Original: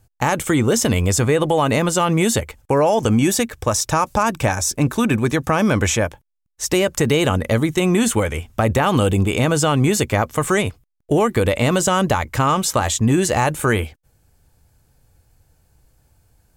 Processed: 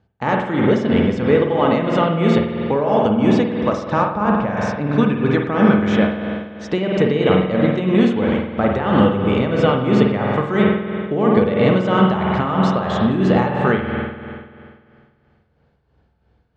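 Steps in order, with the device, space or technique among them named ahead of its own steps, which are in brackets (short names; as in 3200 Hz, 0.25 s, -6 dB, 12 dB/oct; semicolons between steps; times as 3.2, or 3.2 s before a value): combo amplifier with spring reverb and tremolo (spring tank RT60 2.1 s, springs 48 ms, chirp 65 ms, DRR -1 dB; tremolo 3 Hz, depth 57%; speaker cabinet 77–3700 Hz, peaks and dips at 110 Hz -7 dB, 200 Hz +8 dB, 450 Hz +4 dB, 2500 Hz -5 dB); 4.08–4.57 high shelf 3400 Hz -9 dB; gain -1 dB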